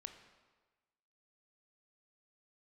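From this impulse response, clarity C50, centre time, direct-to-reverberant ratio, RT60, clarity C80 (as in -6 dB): 8.5 dB, 19 ms, 7.0 dB, 1.3 s, 10.0 dB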